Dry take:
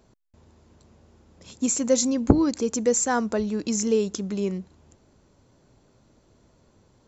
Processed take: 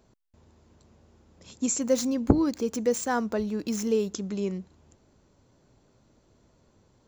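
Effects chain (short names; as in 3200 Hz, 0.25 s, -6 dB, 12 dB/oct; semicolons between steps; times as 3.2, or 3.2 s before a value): 1.81–4.14 median filter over 5 samples; gain -3 dB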